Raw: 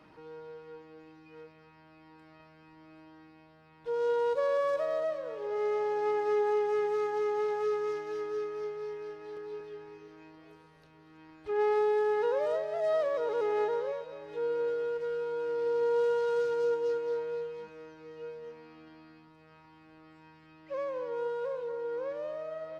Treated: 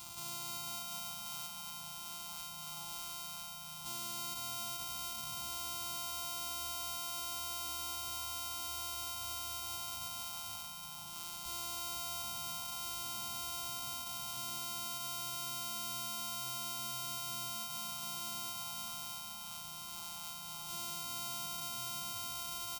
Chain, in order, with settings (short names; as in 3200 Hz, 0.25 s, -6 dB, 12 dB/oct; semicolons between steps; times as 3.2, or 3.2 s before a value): sample sorter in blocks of 128 samples; elliptic band-stop 340–780 Hz, stop band 40 dB; tilt +2 dB/oct; compressor 4:1, threshold -45 dBFS, peak gain reduction 17 dB; limiter -36 dBFS, peak gain reduction 9.5 dB; fixed phaser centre 740 Hz, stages 4; doubler 19 ms -8.5 dB; split-band echo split 1100 Hz, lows 0.503 s, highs 0.318 s, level -6 dB; gain +13.5 dB